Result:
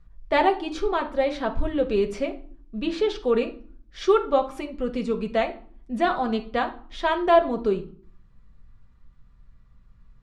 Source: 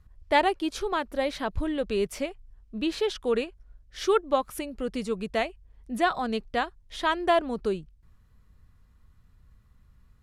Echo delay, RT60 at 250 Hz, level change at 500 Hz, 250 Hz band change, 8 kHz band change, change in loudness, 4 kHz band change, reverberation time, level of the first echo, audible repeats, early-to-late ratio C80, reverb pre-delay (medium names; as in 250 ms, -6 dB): no echo, 0.75 s, +4.5 dB, +3.5 dB, no reading, +3.5 dB, -1.0 dB, 0.50 s, no echo, no echo, 19.5 dB, 4 ms